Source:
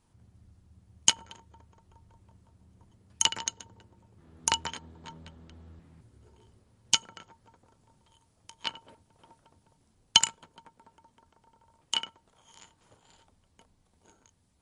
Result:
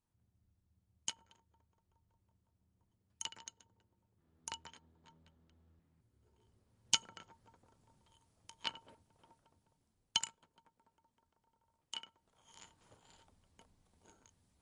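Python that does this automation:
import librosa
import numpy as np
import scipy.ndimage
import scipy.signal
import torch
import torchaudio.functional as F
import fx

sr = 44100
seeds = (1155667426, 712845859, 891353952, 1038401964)

y = fx.gain(x, sr, db=fx.line((5.97, -18.5), (7.03, -6.0), (8.84, -6.0), (10.38, -15.5), (12.05, -15.5), (12.6, -4.0)))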